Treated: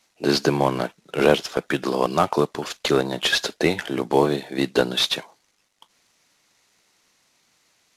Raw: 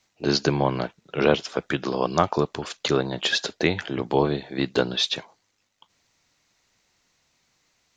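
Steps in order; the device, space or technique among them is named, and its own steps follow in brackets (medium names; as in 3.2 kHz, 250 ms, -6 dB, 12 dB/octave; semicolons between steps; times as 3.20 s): early wireless headset (high-pass 170 Hz 12 dB/octave; CVSD coder 64 kbps); trim +3.5 dB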